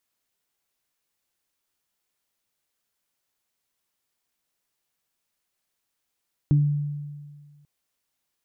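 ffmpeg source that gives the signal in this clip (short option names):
-f lavfi -i "aevalsrc='0.2*pow(10,-3*t/1.73)*sin(2*PI*146*t)+0.0708*pow(10,-3*t/0.3)*sin(2*PI*292*t)':d=1.14:s=44100"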